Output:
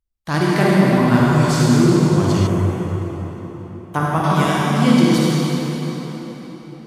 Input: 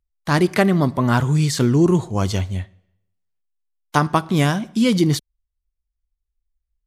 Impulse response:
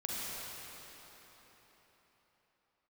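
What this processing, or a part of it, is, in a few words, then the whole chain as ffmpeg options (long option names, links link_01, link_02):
cathedral: -filter_complex "[1:a]atrim=start_sample=2205[link_01];[0:a][link_01]afir=irnorm=-1:irlink=0,asettb=1/sr,asplit=3[link_02][link_03][link_04];[link_02]atrim=end=2.474[link_05];[link_03]atrim=start=2.47:end=4.24,asetpts=PTS-STARTPTS,afade=type=in:duration=0.004:curve=qsin,afade=type=out:start_time=1.766:duration=0.004:curve=qsin,equalizer=frequency=4600:width=1.2:gain=-14[link_06];[link_04]atrim=start=4.236[link_07];[link_05][link_06]acrossfade=duration=0.004:curve1=hsin:curve2=qsin[link_08];[link_08][link_07]acrossfade=duration=0.004:curve1=qsin:curve2=hsin,volume=-1dB"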